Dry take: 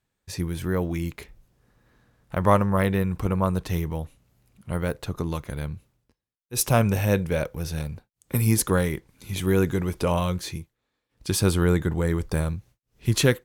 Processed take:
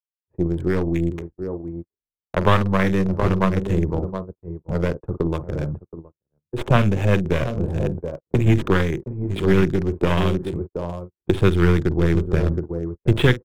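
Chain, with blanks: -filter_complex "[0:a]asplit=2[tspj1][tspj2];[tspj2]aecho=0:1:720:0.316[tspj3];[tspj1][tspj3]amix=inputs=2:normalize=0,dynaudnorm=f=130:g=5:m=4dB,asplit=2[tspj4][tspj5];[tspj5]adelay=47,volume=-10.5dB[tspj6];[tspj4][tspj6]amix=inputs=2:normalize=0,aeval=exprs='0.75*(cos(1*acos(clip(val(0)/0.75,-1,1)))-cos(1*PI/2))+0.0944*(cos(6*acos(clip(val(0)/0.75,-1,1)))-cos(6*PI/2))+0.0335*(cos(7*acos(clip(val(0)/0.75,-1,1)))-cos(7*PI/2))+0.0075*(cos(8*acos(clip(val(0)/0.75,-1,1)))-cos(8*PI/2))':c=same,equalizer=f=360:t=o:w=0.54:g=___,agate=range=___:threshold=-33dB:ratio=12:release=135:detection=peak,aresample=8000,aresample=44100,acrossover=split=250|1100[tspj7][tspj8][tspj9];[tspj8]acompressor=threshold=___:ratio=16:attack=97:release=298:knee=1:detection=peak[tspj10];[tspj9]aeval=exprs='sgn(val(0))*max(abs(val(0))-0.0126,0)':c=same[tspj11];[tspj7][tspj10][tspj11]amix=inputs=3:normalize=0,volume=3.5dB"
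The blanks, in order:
8, -51dB, -31dB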